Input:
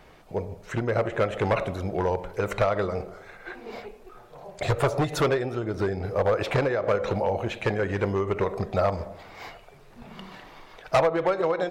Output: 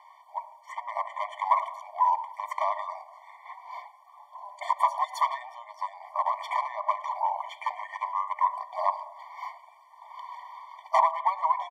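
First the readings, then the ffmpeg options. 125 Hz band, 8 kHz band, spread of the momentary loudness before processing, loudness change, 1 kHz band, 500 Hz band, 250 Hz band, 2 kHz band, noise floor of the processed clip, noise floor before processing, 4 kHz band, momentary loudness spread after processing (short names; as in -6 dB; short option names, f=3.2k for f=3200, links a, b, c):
under -40 dB, n/a, 19 LU, -3.0 dB, +5.5 dB, -15.0 dB, under -40 dB, -7.5 dB, -55 dBFS, -51 dBFS, -7.0 dB, 18 LU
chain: -filter_complex "[0:a]highpass=f=1k:t=q:w=8,asplit=2[a][b];[b]adelay=110,highpass=300,lowpass=3.4k,asoftclip=type=hard:threshold=-12dB,volume=-21dB[c];[a][c]amix=inputs=2:normalize=0,afftfilt=real='re*eq(mod(floor(b*sr/1024/600),2),1)':imag='im*eq(mod(floor(b*sr/1024/600),2),1)':win_size=1024:overlap=0.75,volume=-5dB"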